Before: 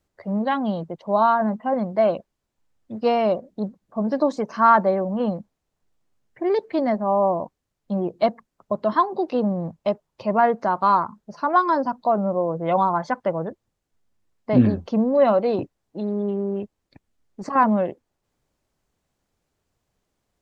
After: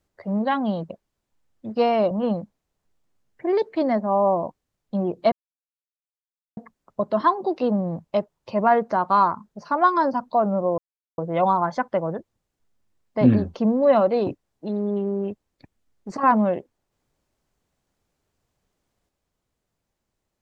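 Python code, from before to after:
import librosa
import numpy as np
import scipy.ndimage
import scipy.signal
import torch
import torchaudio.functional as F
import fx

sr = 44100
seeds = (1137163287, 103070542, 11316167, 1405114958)

y = fx.edit(x, sr, fx.cut(start_s=0.9, length_s=1.26),
    fx.cut(start_s=3.37, length_s=1.71),
    fx.insert_silence(at_s=8.29, length_s=1.25),
    fx.insert_silence(at_s=12.5, length_s=0.4), tone=tone)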